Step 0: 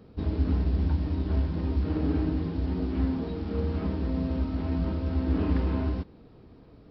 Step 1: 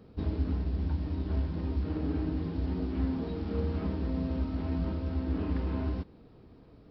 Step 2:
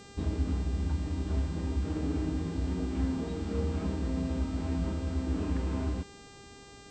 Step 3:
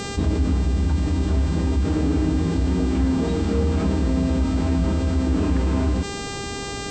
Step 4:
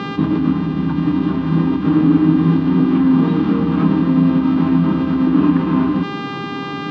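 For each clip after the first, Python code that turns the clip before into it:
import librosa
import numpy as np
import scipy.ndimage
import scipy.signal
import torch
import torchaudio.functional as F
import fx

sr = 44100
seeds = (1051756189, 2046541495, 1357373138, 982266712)

y1 = fx.rider(x, sr, range_db=10, speed_s=0.5)
y1 = y1 * librosa.db_to_amplitude(-4.0)
y2 = fx.dmg_buzz(y1, sr, base_hz=400.0, harmonics=21, level_db=-53.0, tilt_db=-3, odd_only=False)
y3 = fx.env_flatten(y2, sr, amount_pct=50)
y3 = y3 * librosa.db_to_amplitude(8.0)
y4 = fx.cabinet(y3, sr, low_hz=140.0, low_slope=24, high_hz=3300.0, hz=(160.0, 290.0, 450.0, 650.0, 1100.0, 2200.0), db=(7, 7, -7, -8, 8, -4))
y4 = y4 * librosa.db_to_amplitude(5.5)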